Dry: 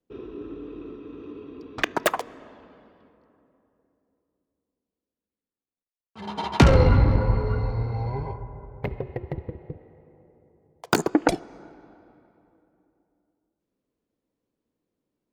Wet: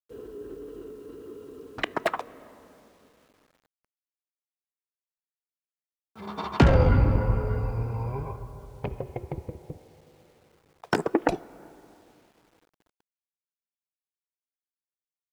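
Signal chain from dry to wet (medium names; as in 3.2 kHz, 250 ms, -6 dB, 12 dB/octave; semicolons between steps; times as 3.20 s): low-pass 2.1 kHz 6 dB/octave; formant shift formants +2 st; bit crusher 10-bit; trim -2.5 dB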